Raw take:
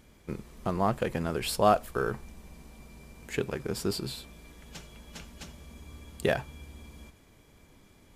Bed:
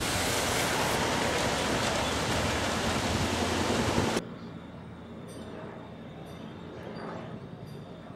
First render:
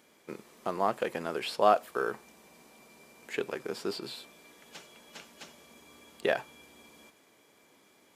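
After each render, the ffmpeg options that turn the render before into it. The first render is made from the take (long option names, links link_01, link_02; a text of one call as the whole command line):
ffmpeg -i in.wav -filter_complex "[0:a]acrossover=split=4700[link_01][link_02];[link_02]acompressor=threshold=-50dB:ratio=4:attack=1:release=60[link_03];[link_01][link_03]amix=inputs=2:normalize=0,highpass=340" out.wav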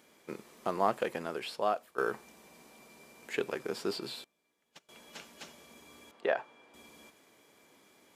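ffmpeg -i in.wav -filter_complex "[0:a]asettb=1/sr,asplit=3[link_01][link_02][link_03];[link_01]atrim=end=4.244[link_04];[link_02]atrim=start=4.24:end=4.89,asetpts=PTS-STARTPTS,afade=type=in:duration=0.004:curve=qsin,afade=type=out:start_time=0.646:duration=0.004:curve=qsin,agate=range=-23dB:threshold=-45dB:ratio=16:release=100:detection=peak[link_05];[link_03]atrim=start=4.886[link_06];[link_04][link_05]acrossfade=duration=0.004:curve1=hsin:curve2=qsin[link_07];[link_07][link_06]acrossfade=duration=0.004:curve1=qsin:curve2=hsin,asettb=1/sr,asplit=3[link_08][link_09][link_10];[link_08]atrim=end=6.114[link_11];[link_09]atrim=start=6.11:end=6.74,asetpts=PTS-STARTPTS,afade=type=in:duration=0.004:curve=qsin,afade=type=out:start_time=0.626:duration=0.004:curve=qsin,bandpass=frequency=870:width_type=q:width=0.65[link_12];[link_10]atrim=start=6.736[link_13];[link_11][link_12]acrossfade=duration=0.004:curve1=hsin:curve2=qsin[link_14];[link_14][link_13]acrossfade=duration=0.004:curve1=qsin:curve2=hsin,asplit=2[link_15][link_16];[link_15]atrim=end=1.98,asetpts=PTS-STARTPTS,afade=type=out:start_time=0.88:duration=1.1:silence=0.199526[link_17];[link_16]atrim=start=1.98,asetpts=PTS-STARTPTS,afade=type=in:duration=0.004:curve=hsin:silence=0.199526[link_18];[link_17][link_18]concat=n=2:v=0:a=1" out.wav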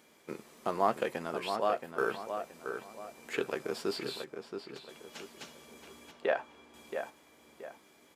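ffmpeg -i in.wav -filter_complex "[0:a]asplit=2[link_01][link_02];[link_02]adelay=13,volume=-12dB[link_03];[link_01][link_03]amix=inputs=2:normalize=0,asplit=2[link_04][link_05];[link_05]adelay=675,lowpass=frequency=3100:poles=1,volume=-7dB,asplit=2[link_06][link_07];[link_07]adelay=675,lowpass=frequency=3100:poles=1,volume=0.36,asplit=2[link_08][link_09];[link_09]adelay=675,lowpass=frequency=3100:poles=1,volume=0.36,asplit=2[link_10][link_11];[link_11]adelay=675,lowpass=frequency=3100:poles=1,volume=0.36[link_12];[link_06][link_08][link_10][link_12]amix=inputs=4:normalize=0[link_13];[link_04][link_13]amix=inputs=2:normalize=0" out.wav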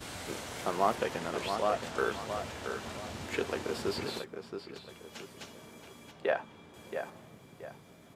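ffmpeg -i in.wav -i bed.wav -filter_complex "[1:a]volume=-13.5dB[link_01];[0:a][link_01]amix=inputs=2:normalize=0" out.wav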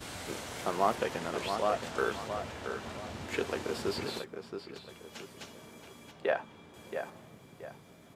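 ffmpeg -i in.wav -filter_complex "[0:a]asettb=1/sr,asplit=3[link_01][link_02][link_03];[link_01]atrim=end=2.284[link_04];[link_02]atrim=start=2.28:end=3.29,asetpts=PTS-STARTPTS,afade=type=in:duration=0.004:curve=qsin,afade=type=out:start_time=1.006:duration=0.004:curve=qsin,highshelf=frequency=4200:gain=-5.5[link_05];[link_03]atrim=start=3.286[link_06];[link_04][link_05]acrossfade=duration=0.004:curve1=hsin:curve2=qsin[link_07];[link_07][link_06]acrossfade=duration=0.004:curve1=qsin:curve2=hsin" out.wav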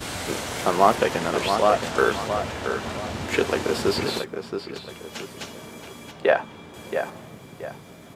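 ffmpeg -i in.wav -af "volume=11dB" out.wav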